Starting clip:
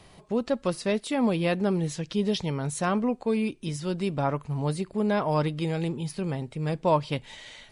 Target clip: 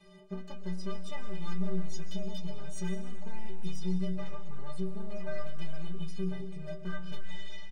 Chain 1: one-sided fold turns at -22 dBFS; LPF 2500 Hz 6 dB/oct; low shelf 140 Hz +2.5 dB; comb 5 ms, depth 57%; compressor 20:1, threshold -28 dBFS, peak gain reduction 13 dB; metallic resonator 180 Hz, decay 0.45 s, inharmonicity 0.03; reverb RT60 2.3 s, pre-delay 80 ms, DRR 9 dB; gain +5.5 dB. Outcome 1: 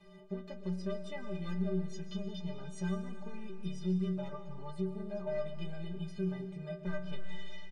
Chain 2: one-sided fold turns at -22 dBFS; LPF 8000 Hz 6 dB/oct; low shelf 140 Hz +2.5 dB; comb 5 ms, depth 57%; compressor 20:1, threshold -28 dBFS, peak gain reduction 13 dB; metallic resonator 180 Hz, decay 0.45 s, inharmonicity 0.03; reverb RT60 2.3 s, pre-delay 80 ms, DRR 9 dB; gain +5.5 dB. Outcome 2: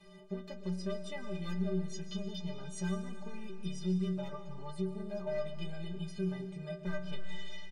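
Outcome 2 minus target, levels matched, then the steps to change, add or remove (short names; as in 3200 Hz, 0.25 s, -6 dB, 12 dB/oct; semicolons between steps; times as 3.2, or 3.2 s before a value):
one-sided fold: distortion -8 dB
change: one-sided fold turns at -28 dBFS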